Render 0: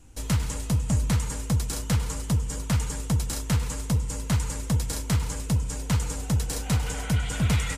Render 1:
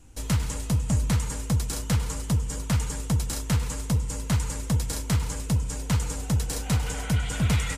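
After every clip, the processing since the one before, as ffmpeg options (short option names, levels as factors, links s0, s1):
-af anull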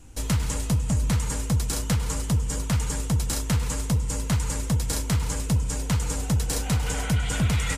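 -af "alimiter=limit=0.119:level=0:latency=1:release=184,volume=1.58"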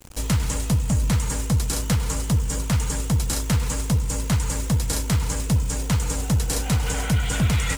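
-af "acrusher=bits=8:dc=4:mix=0:aa=0.000001,volume=1.33"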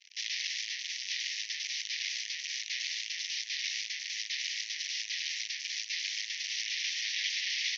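-af "aeval=exprs='(mod(12.6*val(0)+1,2)-1)/12.6':c=same,asuperpass=centerf=3400:order=20:qfactor=0.8,volume=0.841"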